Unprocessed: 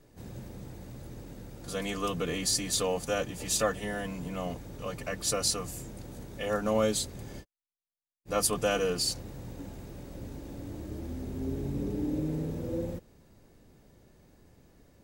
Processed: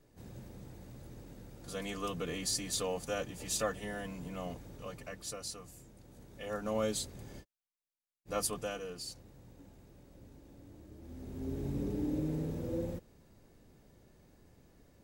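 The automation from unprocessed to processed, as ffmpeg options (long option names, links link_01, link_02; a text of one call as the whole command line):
ffmpeg -i in.wav -af "volume=13dB,afade=type=out:start_time=4.67:duration=0.71:silence=0.398107,afade=type=in:start_time=6:duration=0.92:silence=0.398107,afade=type=out:start_time=8.36:duration=0.44:silence=0.398107,afade=type=in:start_time=10.99:duration=0.7:silence=0.281838" out.wav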